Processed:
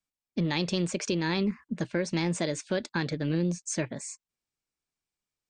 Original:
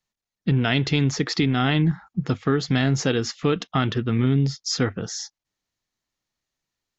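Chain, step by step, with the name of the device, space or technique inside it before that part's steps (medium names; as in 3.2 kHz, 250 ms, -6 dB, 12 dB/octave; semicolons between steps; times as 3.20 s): nightcore (tape speed +27%); trim -7.5 dB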